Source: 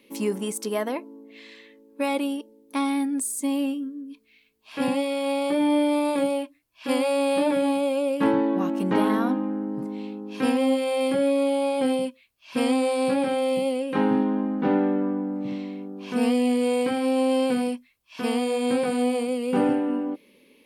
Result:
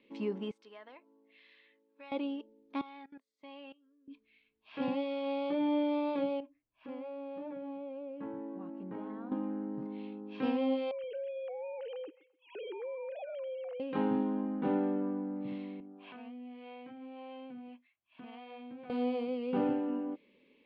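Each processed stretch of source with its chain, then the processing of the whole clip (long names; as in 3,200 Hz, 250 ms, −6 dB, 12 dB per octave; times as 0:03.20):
0:00.51–0:02.12: high-pass filter 1,200 Hz 6 dB per octave + downward compressor 1.5 to 1, threshold −55 dBFS
0:02.81–0:04.08: three-way crossover with the lows and the highs turned down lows −21 dB, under 480 Hz, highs −22 dB, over 5,900 Hz + output level in coarse steps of 20 dB
0:06.40–0:09.32: parametric band 4,500 Hz −14 dB 2.5 octaves + downward compressor 2 to 1, threshold −38 dBFS
0:10.91–0:13.80: three sine waves on the formant tracks + downward compressor 3 to 1, threshold −32 dBFS + repeating echo 129 ms, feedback 38%, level −21 dB
0:15.80–0:18.90: loudspeaker in its box 110–3,700 Hz, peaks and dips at 200 Hz −5 dB, 460 Hz −10 dB, 680 Hz +5 dB + downward compressor 4 to 1, threshold −34 dBFS + two-band tremolo in antiphase 1.7 Hz, crossover 410 Hz
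whole clip: low-pass filter 3,600 Hz 24 dB per octave; dynamic equaliser 1,900 Hz, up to −5 dB, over −44 dBFS, Q 1.6; level −9 dB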